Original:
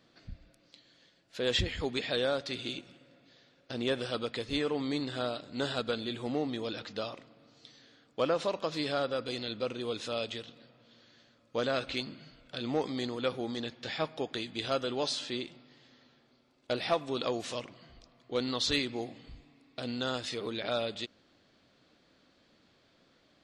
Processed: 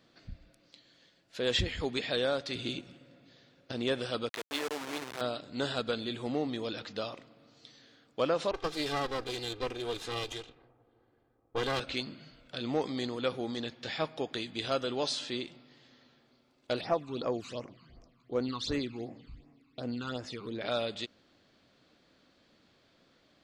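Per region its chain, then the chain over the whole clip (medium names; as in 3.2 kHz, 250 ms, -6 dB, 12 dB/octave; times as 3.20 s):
2.55–3.72 s: high-pass 47 Hz + bass shelf 290 Hz +6.5 dB
4.29–5.21 s: send-on-delta sampling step -30.5 dBFS + frequency weighting A
8.51–11.80 s: comb filter that takes the minimum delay 2.5 ms + level-controlled noise filter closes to 730 Hz, open at -33.5 dBFS
16.81–20.61 s: treble shelf 4.9 kHz -9.5 dB + phase shifter stages 12, 2.7 Hz, lowest notch 550–3800 Hz
whole clip: none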